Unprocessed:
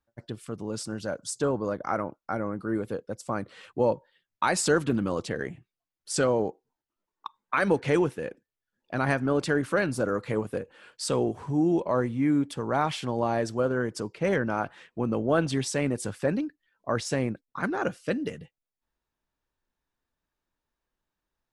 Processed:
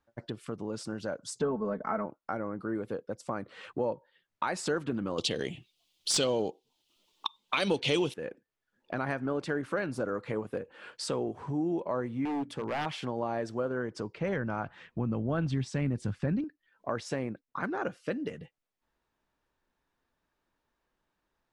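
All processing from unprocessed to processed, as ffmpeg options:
ffmpeg -i in.wav -filter_complex "[0:a]asettb=1/sr,asplit=3[link_01][link_02][link_03];[link_01]atrim=end=1.394[link_04];[link_02]atrim=start=1.39:end=2.06,asetpts=PTS-STARTPTS,afade=type=in:duration=0.004:curve=qsin,afade=type=out:start_time=0.666:duration=0.004:curve=qsin,bass=frequency=250:gain=5,treble=frequency=4000:gain=-15,aecho=1:1:4.6:0.83,atrim=end_sample=29547[link_05];[link_03]atrim=start=2.056[link_06];[link_04][link_05]acrossfade=duration=0.004:curve1=hsin:curve2=qsin[link_07];[link_07][link_06]acrossfade=duration=0.004:curve1=qsin:curve2=hsin,asettb=1/sr,asplit=3[link_08][link_09][link_10];[link_08]atrim=end=5.184[link_11];[link_09]atrim=start=5.18:end=8.14,asetpts=PTS-STARTPTS,afade=type=in:duration=0.004:curve=qsin,afade=type=out:start_time=2.956:duration=0.004:curve=qsin,highshelf=frequency=2300:width_type=q:width=3:gain=12,acontrast=54,aeval=exprs='clip(val(0),-1,0.422)':channel_layout=same[link_12];[link_10]atrim=start=8.136[link_13];[link_11][link_12]acrossfade=duration=0.004:curve1=hsin:curve2=qsin[link_14];[link_14][link_13]acrossfade=duration=0.004:curve1=qsin:curve2=hsin,asettb=1/sr,asplit=3[link_15][link_16][link_17];[link_15]atrim=end=12.254[link_18];[link_16]atrim=start=12.25:end=12.86,asetpts=PTS-STARTPTS,afade=type=in:duration=0.004:curve=qsin,afade=type=out:start_time=0.606:duration=0.004:curve=qsin,bandreject=frequency=60:width_type=h:width=6,bandreject=frequency=120:width_type=h:width=6,bandreject=frequency=180:width_type=h:width=6,bandreject=frequency=240:width_type=h:width=6,aeval=exprs='0.075*(abs(mod(val(0)/0.075+3,4)-2)-1)':channel_layout=same[link_19];[link_17]atrim=start=12.856[link_20];[link_18][link_19]acrossfade=duration=0.004:curve1=hsin:curve2=qsin[link_21];[link_21][link_20]acrossfade=duration=0.004:curve1=qsin:curve2=hsin,asettb=1/sr,asplit=3[link_22][link_23][link_24];[link_22]atrim=end=13.804[link_25];[link_23]atrim=start=13.8:end=16.44,asetpts=PTS-STARTPTS,afade=type=in:duration=0.004:curve=qsin,afade=type=out:start_time=2.636:duration=0.004:curve=qsin,lowpass=7400,asubboost=boost=10:cutoff=180[link_26];[link_24]atrim=start=16.436[link_27];[link_25][link_26]acrossfade=duration=0.004:curve1=hsin:curve2=qsin[link_28];[link_28][link_27]acrossfade=duration=0.004:curve1=qsin:curve2=hsin,lowpass=frequency=3000:poles=1,lowshelf=frequency=130:gain=-7,acompressor=threshold=-47dB:ratio=2,volume=7.5dB" out.wav

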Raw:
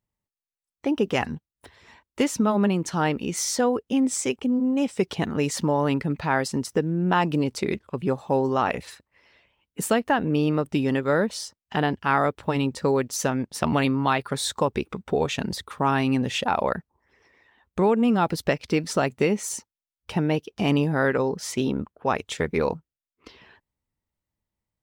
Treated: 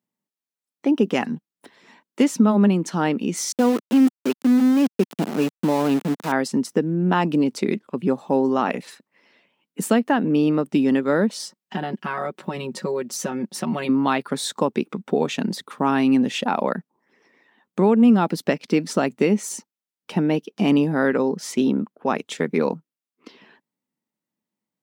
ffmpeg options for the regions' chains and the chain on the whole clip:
ffmpeg -i in.wav -filter_complex "[0:a]asettb=1/sr,asplit=3[link_01][link_02][link_03];[link_01]atrim=end=3.524[link_04];[link_02]atrim=start=3.52:end=6.32,asetpts=PTS-STARTPTS,afade=type=in:duration=0.004:curve=qsin,afade=type=out:start_time=2.796:duration=0.004:curve=qsin,deesser=0.95,asuperstop=centerf=2000:order=8:qfactor=3.3,aeval=exprs='val(0)*gte(abs(val(0)),0.0447)':channel_layout=same[link_05];[link_03]atrim=start=6.316[link_06];[link_04][link_05]acrossfade=duration=0.004:curve1=hsin:curve2=qsin[link_07];[link_07][link_06]acrossfade=duration=0.004:curve1=qsin:curve2=hsin,asettb=1/sr,asplit=3[link_08][link_09][link_10];[link_08]atrim=end=11.394[link_11];[link_09]atrim=start=11.39:end=13.89,asetpts=PTS-STARTPTS,afade=type=in:duration=0.004:curve=qsin,afade=type=out:start_time=2.496:duration=0.004:curve=qsin,aecho=1:1:5.4:0.86,atrim=end_sample=110250,acompressor=threshold=-27dB:ratio=2.5:attack=3.2:release=140:knee=1:detection=peak[link_12];[link_10]atrim=start=13.886[link_13];[link_11][link_12]acrossfade=duration=0.004:curve1=hsin:curve2=qsin[link_14];[link_14][link_13]acrossfade=duration=0.004:curve1=qsin:curve2=hsin,highpass=frequency=170:width=0.5412,highpass=frequency=170:width=1.3066,equalizer=frequency=230:width_type=o:width=1.2:gain=7.5" out.wav

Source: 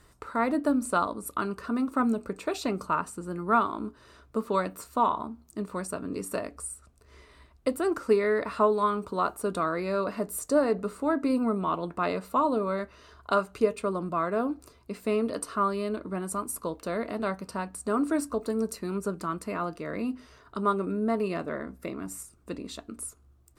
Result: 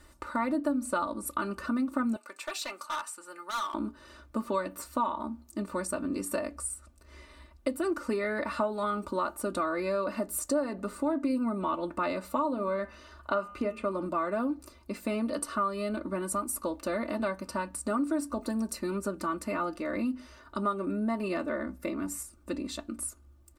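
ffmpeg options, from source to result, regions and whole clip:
ffmpeg -i in.wav -filter_complex "[0:a]asettb=1/sr,asplit=3[link_01][link_02][link_03];[link_01]atrim=end=2.164[link_04];[link_02]atrim=start=2.16:end=3.74,asetpts=PTS-STARTPTS,afade=type=in:duration=0.004:curve=qsin,afade=type=out:start_time=1.576:duration=0.004:curve=qsin,highpass=1000,asoftclip=type=hard:threshold=-32.5dB[link_05];[link_03]atrim=start=3.736[link_06];[link_04][link_05]acrossfade=duration=0.004:curve1=hsin:curve2=qsin[link_07];[link_07][link_06]acrossfade=duration=0.004:curve1=qsin:curve2=hsin,asettb=1/sr,asplit=3[link_08][link_09][link_10];[link_08]atrim=end=12.484[link_11];[link_09]atrim=start=12.48:end=14.06,asetpts=PTS-STARTPTS,afade=type=in:duration=0.004:curve=qsin,afade=type=out:start_time=1.576:duration=0.004:curve=qsin,acrossover=split=3400[link_12][link_13];[link_13]acompressor=threshold=-59dB:ratio=4:attack=1:release=60[link_14];[link_12][link_14]amix=inputs=2:normalize=0,bandreject=frequency=110.5:width_type=h:width=4,bandreject=frequency=221:width_type=h:width=4,bandreject=frequency=331.5:width_type=h:width=4,bandreject=frequency=442:width_type=h:width=4,bandreject=frequency=552.5:width_type=h:width=4,bandreject=frequency=663:width_type=h:width=4,bandreject=frequency=773.5:width_type=h:width=4,bandreject=frequency=884:width_type=h:width=4,bandreject=frequency=994.5:width_type=h:width=4,bandreject=frequency=1105:width_type=h:width=4,bandreject=frequency=1215.5:width_type=h:width=4,bandreject=frequency=1326:width_type=h:width=4,bandreject=frequency=1436.5:width_type=h:width=4,bandreject=frequency=1547:width_type=h:width=4,bandreject=frequency=1657.5:width_type=h:width=4,bandreject=frequency=1768:width_type=h:width=4,bandreject=frequency=1878.5:width_type=h:width=4,bandreject=frequency=1989:width_type=h:width=4,bandreject=frequency=2099.5:width_type=h:width=4,bandreject=frequency=2210:width_type=h:width=4,bandreject=frequency=2320.5:width_type=h:width=4,bandreject=frequency=2431:width_type=h:width=4,bandreject=frequency=2541.5:width_type=h:width=4,bandreject=frequency=2652:width_type=h:width=4,bandreject=frequency=2762.5:width_type=h:width=4,bandreject=frequency=2873:width_type=h:width=4,bandreject=frequency=2983.5:width_type=h:width=4,bandreject=frequency=3094:width_type=h:width=4[link_15];[link_10]atrim=start=14.056[link_16];[link_11][link_15]acrossfade=duration=0.004:curve1=hsin:curve2=qsin[link_17];[link_17][link_16]acrossfade=duration=0.004:curve1=qsin:curve2=hsin,aecho=1:1:3.4:0.83,acompressor=threshold=-28dB:ratio=3" out.wav

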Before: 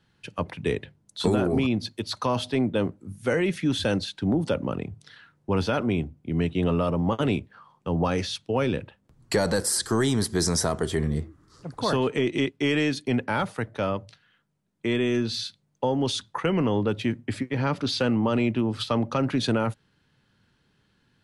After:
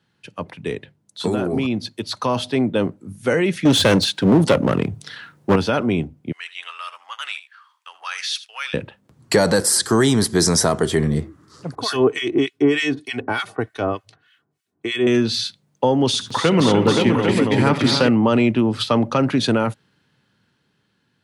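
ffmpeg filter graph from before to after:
ffmpeg -i in.wav -filter_complex "[0:a]asettb=1/sr,asplit=3[link_01][link_02][link_03];[link_01]atrim=end=3.654[link_04];[link_02]atrim=start=3.65:end=5.56,asetpts=PTS-STARTPTS,afade=type=in:duration=0.004:curve=qsin,afade=type=out:start_time=1.906:duration=0.004:curve=qsin,highshelf=frequency=8700:gain=5,aeval=exprs='clip(val(0),-1,0.0422)':channel_layout=same,acontrast=89[link_05];[link_03]atrim=start=5.556[link_06];[link_04][link_05]acrossfade=duration=0.004:curve1=hsin:curve2=qsin[link_07];[link_07][link_06]acrossfade=duration=0.004:curve1=qsin:curve2=hsin,asettb=1/sr,asplit=3[link_08][link_09][link_10];[link_08]atrim=end=6.324[link_11];[link_09]atrim=start=6.32:end=8.74,asetpts=PTS-STARTPTS,afade=type=in:duration=0.004:curve=qsin,afade=type=out:start_time=2.416:duration=0.004:curve=qsin,highpass=frequency=1400:width=0.5412,highpass=frequency=1400:width=1.3066,aecho=1:1:79:0.168,atrim=end_sample=106722[link_12];[link_10]atrim=start=8.736[link_13];[link_11][link_12]acrossfade=duration=0.004:curve1=hsin:curve2=qsin[link_14];[link_14][link_13]acrossfade=duration=0.004:curve1=qsin:curve2=hsin,asettb=1/sr,asplit=3[link_15][link_16][link_17];[link_15]atrim=end=11.754[link_18];[link_16]atrim=start=11.75:end=15.07,asetpts=PTS-STARTPTS,afade=type=in:duration=0.004:curve=qsin,afade=type=out:start_time=3.316:duration=0.004:curve=qsin,aecho=1:1:2.7:0.61,atrim=end_sample=146412,acrossover=split=1400[link_19][link_20];[link_19]aeval=exprs='val(0)*(1-1/2+1/2*cos(2*PI*3.3*n/s))':channel_layout=same[link_21];[link_20]aeval=exprs='val(0)*(1-1/2-1/2*cos(2*PI*3.3*n/s))':channel_layout=same[link_22];[link_21][link_22]amix=inputs=2:normalize=0[link_23];[link_17]atrim=start=15.066[link_24];[link_18][link_23]acrossfade=duration=0.004:curve1=hsin:curve2=qsin[link_25];[link_25][link_24]acrossfade=duration=0.004:curve1=qsin:curve2=hsin,asettb=1/sr,asplit=3[link_26][link_27][link_28];[link_26]atrim=end=16.074[link_29];[link_27]atrim=start=16.07:end=18.09,asetpts=PTS-STARTPTS,afade=type=in:duration=0.004:curve=qsin,afade=type=out:start_time=2.016:duration=0.004:curve=qsin,acompressor=mode=upward:threshold=-26dB:ratio=2.5:attack=3.2:release=140:knee=2.83:detection=peak,aecho=1:1:68|80|235|299|525|799:0.178|0.126|0.299|0.376|0.562|0.531,atrim=end_sample=89082[link_30];[link_28]atrim=start=18.086[link_31];[link_29][link_30]acrossfade=duration=0.004:curve1=hsin:curve2=qsin[link_32];[link_32][link_31]acrossfade=duration=0.004:curve1=qsin:curve2=hsin,dynaudnorm=framelen=290:gausssize=13:maxgain=9dB,highpass=110" out.wav

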